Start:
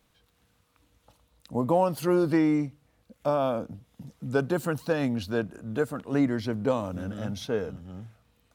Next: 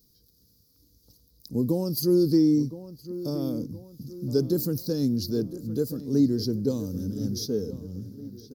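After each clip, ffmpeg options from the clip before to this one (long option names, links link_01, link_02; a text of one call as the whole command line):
ffmpeg -i in.wav -filter_complex "[0:a]firequalizer=gain_entry='entry(410,0);entry(650,-22);entry(2700,-25);entry(4800,12);entry(8100,-5);entry(13000,13)':delay=0.05:min_phase=1,asplit=2[link_01][link_02];[link_02]adelay=1017,lowpass=frequency=2700:poles=1,volume=-14dB,asplit=2[link_03][link_04];[link_04]adelay=1017,lowpass=frequency=2700:poles=1,volume=0.47,asplit=2[link_05][link_06];[link_06]adelay=1017,lowpass=frequency=2700:poles=1,volume=0.47,asplit=2[link_07][link_08];[link_08]adelay=1017,lowpass=frequency=2700:poles=1,volume=0.47[link_09];[link_01][link_03][link_05][link_07][link_09]amix=inputs=5:normalize=0,volume=3dB" out.wav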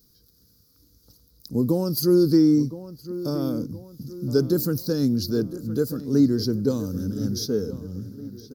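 ffmpeg -i in.wav -af "equalizer=frequency=1400:width=2:gain=10.5,volume=3dB" out.wav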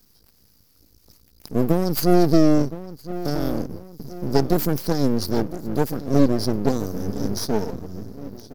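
ffmpeg -i in.wav -af "aeval=exprs='max(val(0),0)':channel_layout=same,equalizer=frequency=120:width=7.1:gain=-5,volume=5.5dB" out.wav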